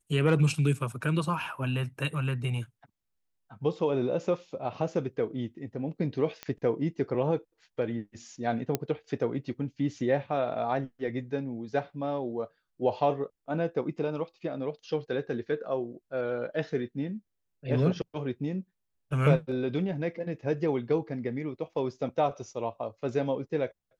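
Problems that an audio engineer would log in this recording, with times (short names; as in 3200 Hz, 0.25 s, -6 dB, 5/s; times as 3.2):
6.43 pop -20 dBFS
8.75 pop -12 dBFS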